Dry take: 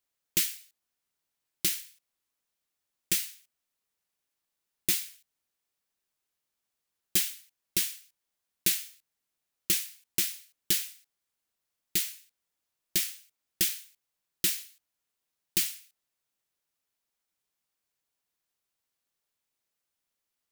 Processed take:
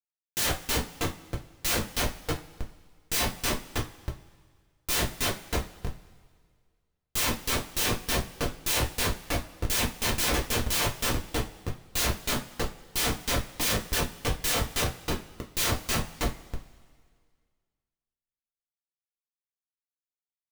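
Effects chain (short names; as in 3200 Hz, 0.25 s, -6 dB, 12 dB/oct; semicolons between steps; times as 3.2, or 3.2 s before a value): frequency-shifting echo 0.32 s, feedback 47%, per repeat +64 Hz, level -7.5 dB; Schmitt trigger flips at -33 dBFS; two-slope reverb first 0.24 s, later 1.9 s, from -22 dB, DRR -1 dB; gain +7 dB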